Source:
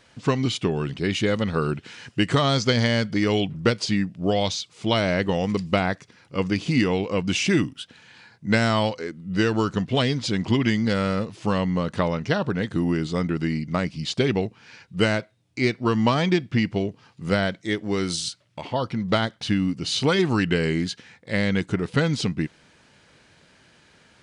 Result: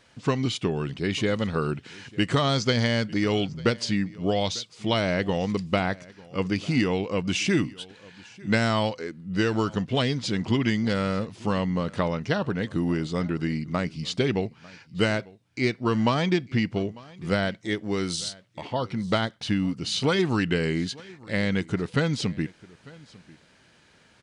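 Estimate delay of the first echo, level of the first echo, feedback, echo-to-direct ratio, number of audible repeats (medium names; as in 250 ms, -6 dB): 898 ms, -22.5 dB, no regular repeats, -22.5 dB, 1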